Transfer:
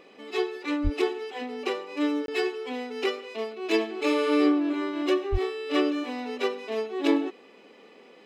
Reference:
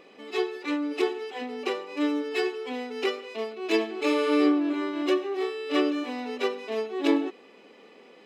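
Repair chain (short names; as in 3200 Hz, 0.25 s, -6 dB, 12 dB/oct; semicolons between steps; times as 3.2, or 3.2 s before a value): 0.83–0.95 HPF 140 Hz 24 dB/oct; 5.31–5.43 HPF 140 Hz 24 dB/oct; interpolate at 2.26, 22 ms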